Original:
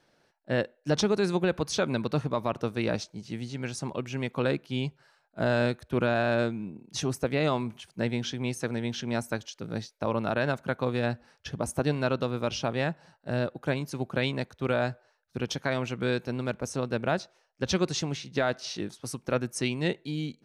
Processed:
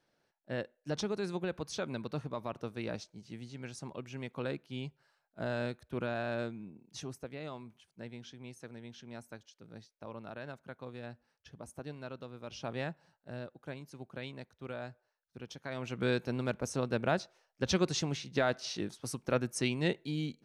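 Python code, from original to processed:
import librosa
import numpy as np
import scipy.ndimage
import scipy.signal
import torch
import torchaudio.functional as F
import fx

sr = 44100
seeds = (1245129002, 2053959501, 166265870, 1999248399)

y = fx.gain(x, sr, db=fx.line((6.83, -10.0), (7.37, -17.0), (12.42, -17.0), (12.74, -8.0), (13.46, -15.0), (15.6, -15.0), (16.02, -3.0)))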